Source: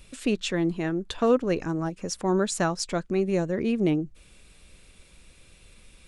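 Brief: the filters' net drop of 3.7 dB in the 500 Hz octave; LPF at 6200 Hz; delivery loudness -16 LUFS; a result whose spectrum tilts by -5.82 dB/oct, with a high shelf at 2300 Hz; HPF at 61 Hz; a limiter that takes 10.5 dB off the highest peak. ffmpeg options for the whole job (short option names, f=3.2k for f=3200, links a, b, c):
-af "highpass=61,lowpass=6.2k,equalizer=f=500:t=o:g=-4.5,highshelf=f=2.3k:g=-6.5,volume=18dB,alimiter=limit=-6.5dB:level=0:latency=1"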